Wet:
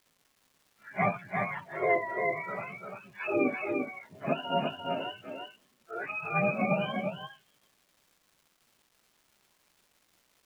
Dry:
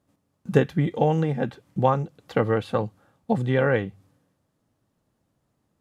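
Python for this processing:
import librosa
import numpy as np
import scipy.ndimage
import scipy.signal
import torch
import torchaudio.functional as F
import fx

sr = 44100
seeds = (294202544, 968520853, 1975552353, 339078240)

y = fx.octave_mirror(x, sr, pivot_hz=560.0)
y = fx.level_steps(y, sr, step_db=11)
y = scipy.signal.sosfilt(scipy.signal.ellip(3, 1.0, 50, [140.0, 3400.0], 'bandpass', fs=sr, output='sos'), y)
y = fx.stretch_vocoder_free(y, sr, factor=1.8)
y = fx.dmg_crackle(y, sr, seeds[0], per_s=580.0, level_db=-55.0)
y = y + 10.0 ** (-4.5 / 20.0) * np.pad(y, (int(346 * sr / 1000.0), 0))[:len(y)]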